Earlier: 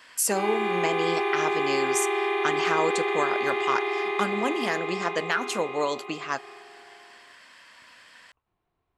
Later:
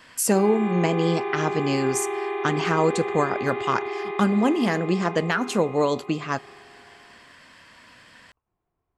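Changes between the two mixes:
speech: remove HPF 780 Hz 6 dB/oct; background: add tape spacing loss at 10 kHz 29 dB

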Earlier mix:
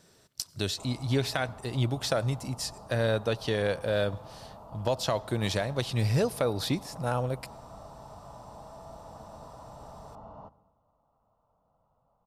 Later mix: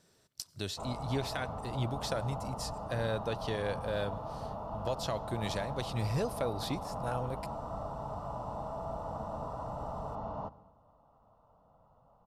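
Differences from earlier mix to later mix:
speech -7.0 dB; background +7.5 dB

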